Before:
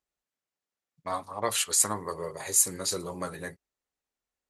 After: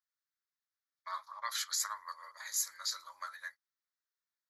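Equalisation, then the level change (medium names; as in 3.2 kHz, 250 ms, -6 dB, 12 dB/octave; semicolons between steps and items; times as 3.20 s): elliptic high-pass 680 Hz, stop band 40 dB; static phaser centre 2.7 kHz, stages 6; -2.0 dB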